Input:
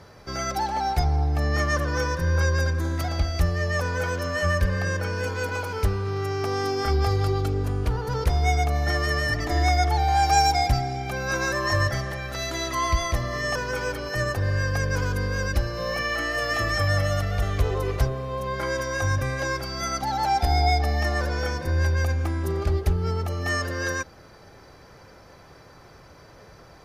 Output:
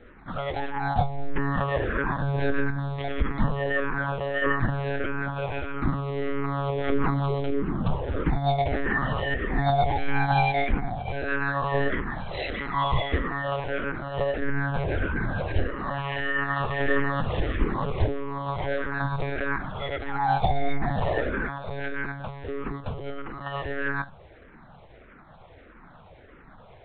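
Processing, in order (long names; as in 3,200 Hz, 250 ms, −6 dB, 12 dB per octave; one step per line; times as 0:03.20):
0:21.47–0:23.65: low-shelf EQ 270 Hz −11.5 dB
convolution reverb, pre-delay 3 ms, DRR 17.5 dB
one-pitch LPC vocoder at 8 kHz 140 Hz
frequency shifter mixed with the dry sound −1.6 Hz
level +2 dB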